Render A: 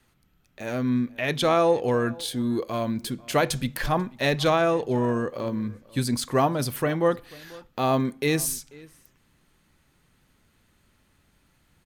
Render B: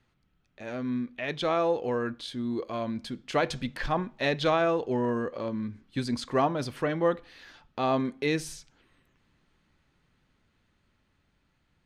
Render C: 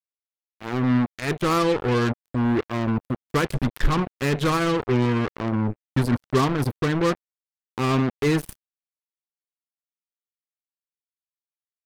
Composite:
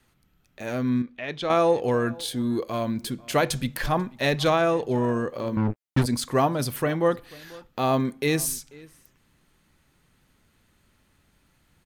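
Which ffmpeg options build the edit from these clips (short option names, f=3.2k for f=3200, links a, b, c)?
-filter_complex "[0:a]asplit=3[a][b][c];[a]atrim=end=1.022[d];[1:a]atrim=start=1.018:end=1.502[e];[b]atrim=start=1.498:end=5.572[f];[2:a]atrim=start=5.568:end=6.062[g];[c]atrim=start=6.058[h];[d][e]acrossfade=d=0.004:c1=hsin:c2=hsin[i];[i][f]acrossfade=d=0.004:c1=hsin:c2=hsin[j];[j][g]acrossfade=d=0.004:c1=hsin:c2=hsin[k];[k][h]acrossfade=d=0.004:c1=hsin:c2=hsin"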